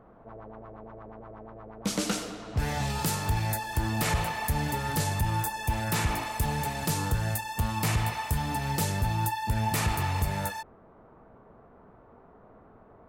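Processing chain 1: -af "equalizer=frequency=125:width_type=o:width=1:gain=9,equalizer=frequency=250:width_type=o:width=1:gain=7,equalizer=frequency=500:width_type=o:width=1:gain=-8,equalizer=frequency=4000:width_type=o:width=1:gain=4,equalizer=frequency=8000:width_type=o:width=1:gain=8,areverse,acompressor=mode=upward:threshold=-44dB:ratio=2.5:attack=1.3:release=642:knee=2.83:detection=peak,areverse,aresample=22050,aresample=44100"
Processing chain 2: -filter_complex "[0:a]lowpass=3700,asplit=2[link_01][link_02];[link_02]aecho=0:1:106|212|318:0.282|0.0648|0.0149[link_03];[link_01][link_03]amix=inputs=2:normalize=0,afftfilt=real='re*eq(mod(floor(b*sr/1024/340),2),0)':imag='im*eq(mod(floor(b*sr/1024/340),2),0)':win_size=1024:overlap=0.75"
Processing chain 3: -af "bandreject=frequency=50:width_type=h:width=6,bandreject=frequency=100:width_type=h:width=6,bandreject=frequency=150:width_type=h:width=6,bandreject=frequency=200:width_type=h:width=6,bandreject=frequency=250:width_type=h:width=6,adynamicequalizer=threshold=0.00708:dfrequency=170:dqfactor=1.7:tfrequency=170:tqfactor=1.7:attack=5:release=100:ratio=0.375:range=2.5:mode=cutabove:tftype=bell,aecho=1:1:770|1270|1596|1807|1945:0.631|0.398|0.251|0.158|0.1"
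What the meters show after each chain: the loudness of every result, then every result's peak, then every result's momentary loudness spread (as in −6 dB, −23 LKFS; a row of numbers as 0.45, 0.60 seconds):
−24.0, −31.0, −28.5 LKFS; −9.0, −16.5, −14.0 dBFS; 21, 20, 18 LU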